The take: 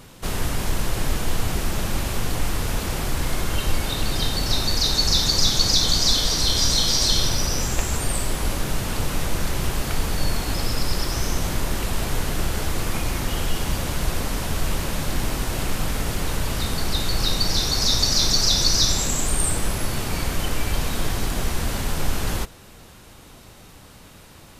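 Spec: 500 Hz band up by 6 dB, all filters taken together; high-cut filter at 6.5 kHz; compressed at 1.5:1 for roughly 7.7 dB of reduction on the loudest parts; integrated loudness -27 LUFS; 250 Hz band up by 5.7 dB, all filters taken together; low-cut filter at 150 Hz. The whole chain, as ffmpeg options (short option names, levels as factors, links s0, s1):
-af "highpass=150,lowpass=6500,equalizer=f=250:t=o:g=7,equalizer=f=500:t=o:g=5.5,acompressor=threshold=0.0126:ratio=1.5,volume=1.41"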